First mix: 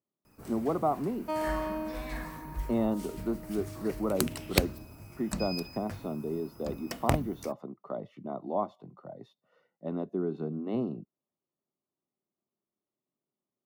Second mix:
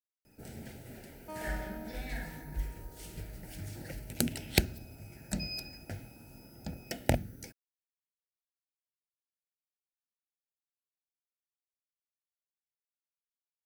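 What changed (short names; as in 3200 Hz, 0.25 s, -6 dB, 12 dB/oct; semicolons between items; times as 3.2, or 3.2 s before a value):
speech: muted; first sound: add Butterworth band-stop 1100 Hz, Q 2; second sound -11.5 dB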